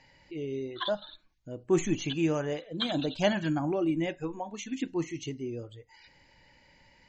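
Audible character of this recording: noise floor -62 dBFS; spectral tilt -5.5 dB/octave

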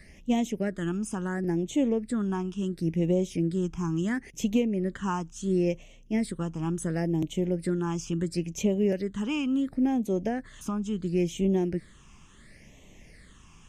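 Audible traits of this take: phasing stages 8, 0.72 Hz, lowest notch 560–1500 Hz

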